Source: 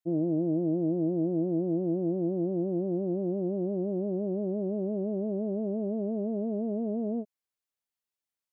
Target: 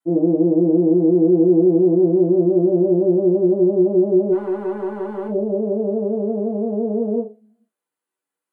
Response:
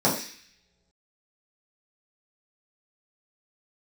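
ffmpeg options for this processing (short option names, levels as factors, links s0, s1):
-filter_complex "[0:a]asplit=3[s0][s1][s2];[s0]afade=t=out:st=4.31:d=0.02[s3];[s1]aeval=exprs='max(val(0),0)':c=same,afade=t=in:st=4.31:d=0.02,afade=t=out:st=5.27:d=0.02[s4];[s2]afade=t=in:st=5.27:d=0.02[s5];[s3][s4][s5]amix=inputs=3:normalize=0[s6];[1:a]atrim=start_sample=2205,asetrate=79380,aresample=44100[s7];[s6][s7]afir=irnorm=-1:irlink=0,volume=0.631"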